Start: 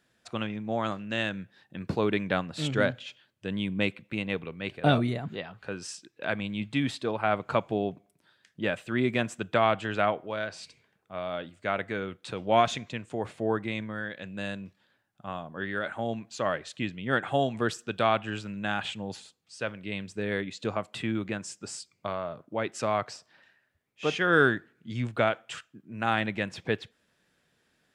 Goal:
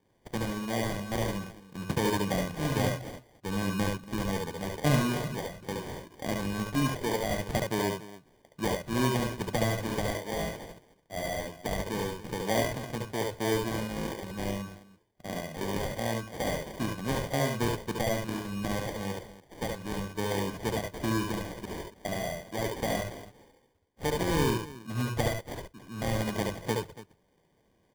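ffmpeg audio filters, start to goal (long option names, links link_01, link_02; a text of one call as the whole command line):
ffmpeg -i in.wav -filter_complex "[0:a]acrossover=split=310[link_01][link_02];[link_02]acompressor=threshold=-30dB:ratio=4[link_03];[link_01][link_03]amix=inputs=2:normalize=0,acrusher=samples=33:mix=1:aa=0.000001,asplit=2[link_04][link_05];[link_05]aecho=0:1:70|72|284:0.631|0.422|0.15[link_06];[link_04][link_06]amix=inputs=2:normalize=0" out.wav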